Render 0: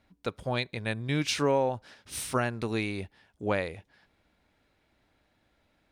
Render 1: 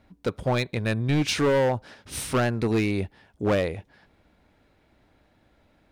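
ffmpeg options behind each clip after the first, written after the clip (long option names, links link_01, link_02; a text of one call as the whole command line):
ffmpeg -i in.wav -af "tiltshelf=frequency=1300:gain=3.5,asoftclip=type=hard:threshold=-24dB,volume=6dB" out.wav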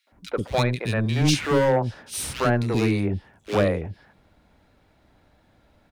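ffmpeg -i in.wav -filter_complex "[0:a]acrossover=split=360|2300[link_01][link_02][link_03];[link_02]adelay=70[link_04];[link_01]adelay=120[link_05];[link_05][link_04][link_03]amix=inputs=3:normalize=0,volume=3.5dB" out.wav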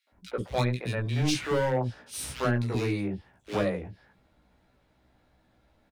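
ffmpeg -i in.wav -filter_complex "[0:a]asplit=2[link_01][link_02];[link_02]adelay=16,volume=-4dB[link_03];[link_01][link_03]amix=inputs=2:normalize=0,volume=-7.5dB" out.wav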